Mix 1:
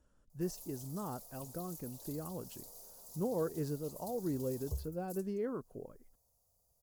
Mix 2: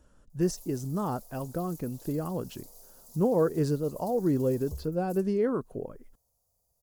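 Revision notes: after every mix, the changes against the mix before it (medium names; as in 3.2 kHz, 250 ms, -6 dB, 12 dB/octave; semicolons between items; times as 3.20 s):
speech +10.5 dB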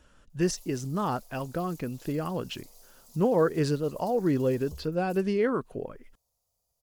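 background -5.0 dB; master: add peaking EQ 2.6 kHz +12.5 dB 2 oct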